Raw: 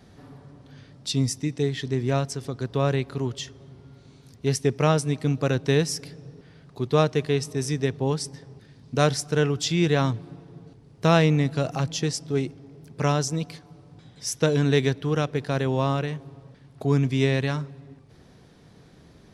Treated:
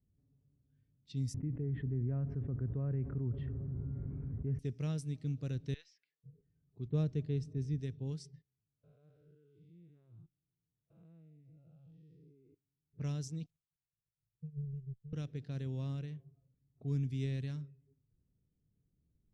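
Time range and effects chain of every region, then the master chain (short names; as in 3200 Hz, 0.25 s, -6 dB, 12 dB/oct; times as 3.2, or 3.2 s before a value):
1.34–4.59 LPF 1500 Hz 24 dB/oct + fast leveller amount 70%
5.74–6.24 HPF 1500 Hz + air absorption 170 m
6.88–7.79 low-pass opened by the level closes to 1500 Hz, open at -16 dBFS + tilt shelf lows +5 dB, about 1100 Hz
8.42–12.93 time blur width 0.287 s + ladder low-pass 5500 Hz, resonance 25% + level quantiser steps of 21 dB
13.46–15.13 switching spikes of -25 dBFS + inverse Chebyshev band-stop 330–8900 Hz + power-law curve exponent 2
whole clip: spectral noise reduction 14 dB; low-pass opened by the level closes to 950 Hz, open at -19 dBFS; passive tone stack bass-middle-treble 10-0-1; gain +1.5 dB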